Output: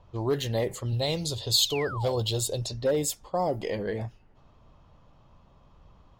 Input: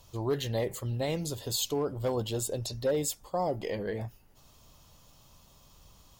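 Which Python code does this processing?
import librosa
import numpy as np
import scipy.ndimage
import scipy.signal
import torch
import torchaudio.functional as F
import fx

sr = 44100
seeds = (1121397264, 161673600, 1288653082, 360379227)

y = fx.graphic_eq_15(x, sr, hz=(100, 250, 1600, 4000), db=(5, -7, -6, 10), at=(0.92, 2.62))
y = fx.env_lowpass(y, sr, base_hz=1500.0, full_db=-28.0)
y = fx.spec_paint(y, sr, seeds[0], shape='fall', start_s=1.6, length_s=0.56, low_hz=470.0, high_hz=5100.0, level_db=-40.0)
y = y * 10.0 ** (3.0 / 20.0)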